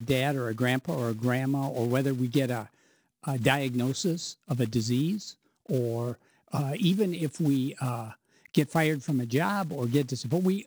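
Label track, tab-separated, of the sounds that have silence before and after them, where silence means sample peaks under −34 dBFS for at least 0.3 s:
3.250000	5.300000	sound
5.690000	6.130000	sound
6.540000	8.100000	sound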